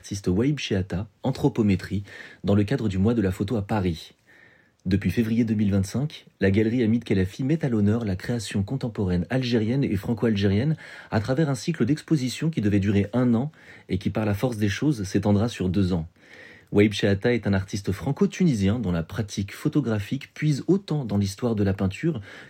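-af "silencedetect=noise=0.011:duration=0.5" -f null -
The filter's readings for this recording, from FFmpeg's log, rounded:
silence_start: 4.08
silence_end: 4.86 | silence_duration: 0.78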